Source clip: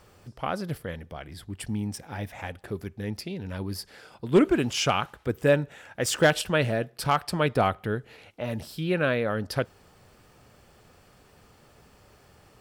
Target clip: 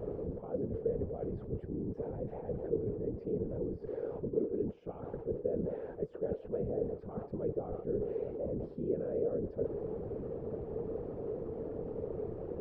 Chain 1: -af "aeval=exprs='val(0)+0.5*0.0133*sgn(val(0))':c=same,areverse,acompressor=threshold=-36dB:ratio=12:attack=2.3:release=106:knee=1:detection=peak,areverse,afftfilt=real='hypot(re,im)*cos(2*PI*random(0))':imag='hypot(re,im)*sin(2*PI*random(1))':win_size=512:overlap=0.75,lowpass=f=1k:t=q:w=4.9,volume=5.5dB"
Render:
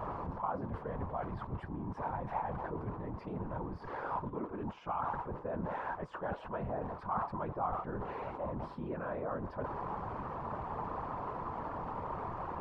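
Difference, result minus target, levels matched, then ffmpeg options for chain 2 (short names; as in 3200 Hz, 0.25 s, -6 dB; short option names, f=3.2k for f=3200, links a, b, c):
1000 Hz band +18.5 dB
-af "aeval=exprs='val(0)+0.5*0.0133*sgn(val(0))':c=same,areverse,acompressor=threshold=-36dB:ratio=12:attack=2.3:release=106:knee=1:detection=peak,areverse,afftfilt=real='hypot(re,im)*cos(2*PI*random(0))':imag='hypot(re,im)*sin(2*PI*random(1))':win_size=512:overlap=0.75,lowpass=f=450:t=q:w=4.9,volume=5.5dB"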